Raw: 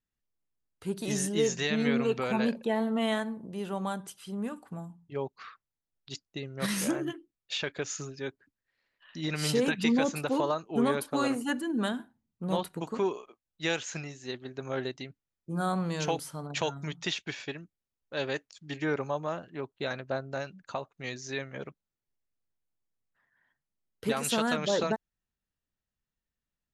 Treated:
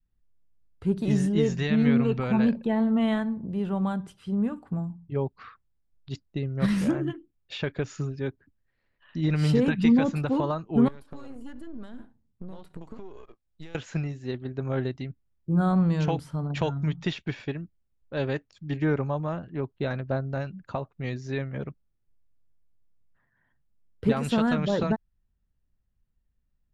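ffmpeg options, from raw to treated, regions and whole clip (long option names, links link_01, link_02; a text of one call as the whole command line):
ffmpeg -i in.wav -filter_complex "[0:a]asettb=1/sr,asplit=3[link_01][link_02][link_03];[link_01]atrim=end=10.884[link_04];[link_02]atrim=start=10.88:end=13.75,asetpts=PTS-STARTPTS,afade=type=in:duration=0.004:curve=qsin,afade=type=out:start_time=2.866:duration=0.004:curve=qsin,aeval=exprs='if(lt(val(0),0),0.447*val(0),val(0))':channel_layout=same,bass=frequency=250:gain=-4,treble=frequency=4000:gain=6,acompressor=threshold=-44dB:ratio=12:attack=3.2:release=140:knee=1:detection=peak[link_05];[link_03]atrim=start=13.746[link_06];[link_04][link_05]acrossfade=duration=0.004:curve1=hsin:curve2=qsin[link_07];[link_07][link_06]acrossfade=duration=0.004:curve1=qsin:curve2=hsin,aemphasis=mode=reproduction:type=riaa,bandreject=frequency=6300:width=15,adynamicequalizer=threshold=0.0126:dfrequency=450:dqfactor=0.9:tfrequency=450:tqfactor=0.9:attack=5:release=100:ratio=0.375:range=2.5:mode=cutabove:tftype=bell,volume=1.5dB" out.wav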